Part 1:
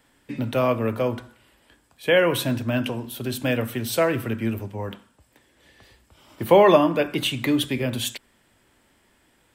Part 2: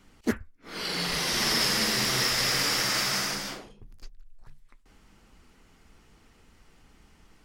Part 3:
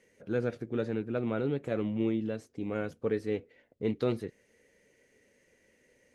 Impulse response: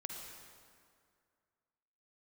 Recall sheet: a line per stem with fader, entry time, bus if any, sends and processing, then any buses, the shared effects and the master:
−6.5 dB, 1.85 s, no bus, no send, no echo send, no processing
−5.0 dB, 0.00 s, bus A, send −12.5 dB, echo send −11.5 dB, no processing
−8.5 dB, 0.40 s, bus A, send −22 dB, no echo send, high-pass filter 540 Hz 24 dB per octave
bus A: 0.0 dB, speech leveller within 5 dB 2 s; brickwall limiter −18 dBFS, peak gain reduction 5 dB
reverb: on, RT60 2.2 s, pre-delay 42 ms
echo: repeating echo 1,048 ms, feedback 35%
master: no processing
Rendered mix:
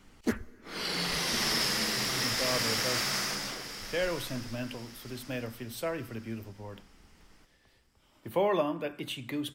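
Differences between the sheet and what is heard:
stem 1 −6.5 dB → −13.0 dB
stem 3: muted

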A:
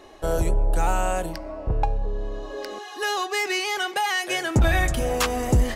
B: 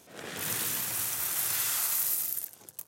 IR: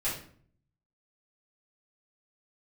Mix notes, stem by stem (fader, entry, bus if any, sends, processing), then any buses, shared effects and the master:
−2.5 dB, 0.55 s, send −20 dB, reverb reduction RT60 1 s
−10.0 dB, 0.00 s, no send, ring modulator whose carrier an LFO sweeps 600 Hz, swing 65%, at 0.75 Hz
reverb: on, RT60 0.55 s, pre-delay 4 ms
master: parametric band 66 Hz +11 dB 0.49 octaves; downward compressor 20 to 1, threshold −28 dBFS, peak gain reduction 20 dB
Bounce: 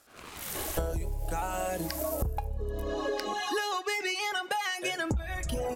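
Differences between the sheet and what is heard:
stem A −2.5 dB → +9.5 dB
stem B −10.0 dB → −2.5 dB

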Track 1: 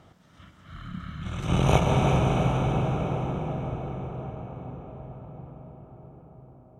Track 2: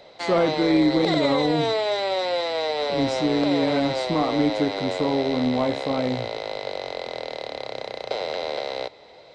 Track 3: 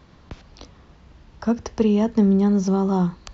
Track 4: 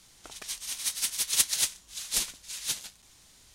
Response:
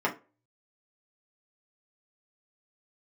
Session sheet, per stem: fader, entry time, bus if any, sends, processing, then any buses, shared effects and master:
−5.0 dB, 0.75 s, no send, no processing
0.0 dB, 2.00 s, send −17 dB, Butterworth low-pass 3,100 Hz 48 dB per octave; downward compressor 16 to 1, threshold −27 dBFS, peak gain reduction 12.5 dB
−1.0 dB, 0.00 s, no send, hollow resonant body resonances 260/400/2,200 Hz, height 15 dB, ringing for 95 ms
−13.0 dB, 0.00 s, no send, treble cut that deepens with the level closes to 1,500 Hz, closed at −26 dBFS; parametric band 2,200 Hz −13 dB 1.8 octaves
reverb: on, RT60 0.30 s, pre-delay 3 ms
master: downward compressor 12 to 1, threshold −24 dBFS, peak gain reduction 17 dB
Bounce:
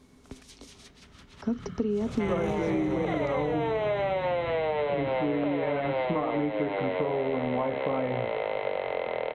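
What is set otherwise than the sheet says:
stem 2: missing downward compressor 16 to 1, threshold −27 dBFS, peak gain reduction 12.5 dB
stem 3 −1.0 dB → −10.5 dB
stem 4: missing parametric band 2,200 Hz −13 dB 1.8 octaves

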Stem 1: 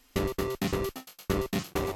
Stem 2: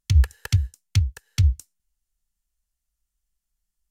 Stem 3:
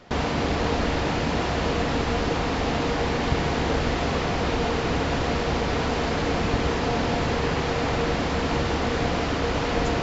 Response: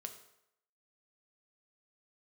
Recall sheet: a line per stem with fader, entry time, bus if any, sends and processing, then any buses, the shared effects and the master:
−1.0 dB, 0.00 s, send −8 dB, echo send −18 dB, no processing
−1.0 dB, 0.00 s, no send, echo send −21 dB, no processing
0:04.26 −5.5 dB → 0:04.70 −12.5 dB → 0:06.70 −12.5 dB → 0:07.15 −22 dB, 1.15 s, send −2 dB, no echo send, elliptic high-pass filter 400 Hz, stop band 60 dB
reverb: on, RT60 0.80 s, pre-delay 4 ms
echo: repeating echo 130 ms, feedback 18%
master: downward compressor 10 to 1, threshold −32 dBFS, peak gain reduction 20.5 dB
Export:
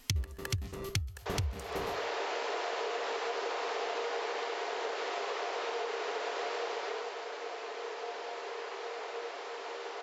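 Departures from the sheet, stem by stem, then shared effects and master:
stem 2 −1.0 dB → +10.5 dB
reverb return +10.0 dB

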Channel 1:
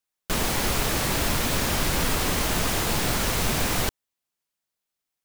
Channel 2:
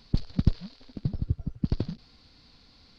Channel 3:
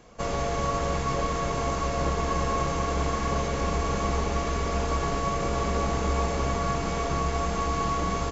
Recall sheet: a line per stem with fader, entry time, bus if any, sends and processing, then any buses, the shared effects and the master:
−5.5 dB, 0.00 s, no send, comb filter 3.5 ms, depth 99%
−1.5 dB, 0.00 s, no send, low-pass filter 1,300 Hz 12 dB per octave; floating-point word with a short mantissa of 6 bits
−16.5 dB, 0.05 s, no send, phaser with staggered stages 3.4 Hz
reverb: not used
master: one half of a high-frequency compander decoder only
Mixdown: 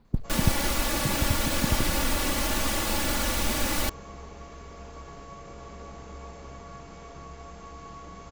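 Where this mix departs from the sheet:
stem 3: missing phaser with staggered stages 3.4 Hz
master: missing one half of a high-frequency compander decoder only

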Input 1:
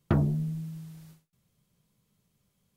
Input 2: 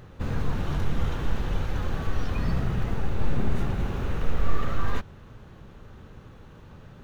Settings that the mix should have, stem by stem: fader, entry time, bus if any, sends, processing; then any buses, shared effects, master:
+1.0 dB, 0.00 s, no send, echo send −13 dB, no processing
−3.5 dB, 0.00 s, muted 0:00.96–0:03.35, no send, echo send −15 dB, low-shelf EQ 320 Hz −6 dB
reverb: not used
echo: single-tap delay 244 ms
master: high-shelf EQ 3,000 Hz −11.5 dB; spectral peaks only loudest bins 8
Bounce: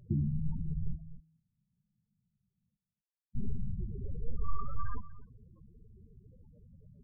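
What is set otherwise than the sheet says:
stem 1 +1.0 dB → −6.0 dB
master: missing high-shelf EQ 3,000 Hz −11.5 dB

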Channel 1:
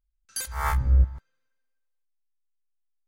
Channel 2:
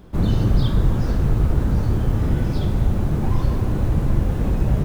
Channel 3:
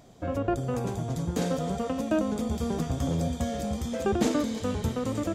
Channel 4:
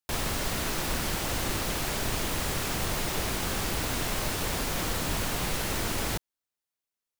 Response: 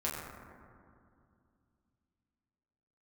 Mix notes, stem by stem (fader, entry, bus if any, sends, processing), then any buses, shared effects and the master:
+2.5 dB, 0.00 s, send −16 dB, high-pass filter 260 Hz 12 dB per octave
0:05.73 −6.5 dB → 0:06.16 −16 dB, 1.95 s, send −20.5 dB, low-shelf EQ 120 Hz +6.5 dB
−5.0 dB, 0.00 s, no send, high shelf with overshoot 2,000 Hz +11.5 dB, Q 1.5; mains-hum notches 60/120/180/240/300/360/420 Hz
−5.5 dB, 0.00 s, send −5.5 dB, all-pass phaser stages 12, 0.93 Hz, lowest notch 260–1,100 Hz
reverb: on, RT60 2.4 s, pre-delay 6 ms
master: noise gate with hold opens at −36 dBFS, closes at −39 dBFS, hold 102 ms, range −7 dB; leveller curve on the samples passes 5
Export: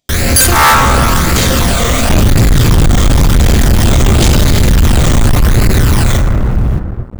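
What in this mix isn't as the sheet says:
stem 1 +2.5 dB → +11.0 dB
reverb return +7.0 dB

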